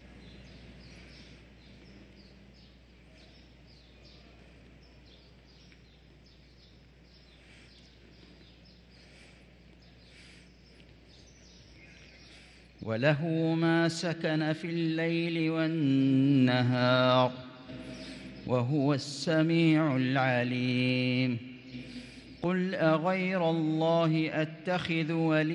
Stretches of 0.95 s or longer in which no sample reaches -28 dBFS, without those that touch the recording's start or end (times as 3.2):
17.28–18.47
21.37–22.44